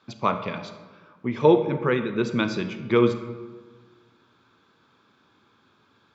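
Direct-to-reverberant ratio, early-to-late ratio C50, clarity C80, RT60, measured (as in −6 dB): 8.5 dB, 10.0 dB, 11.5 dB, 1.4 s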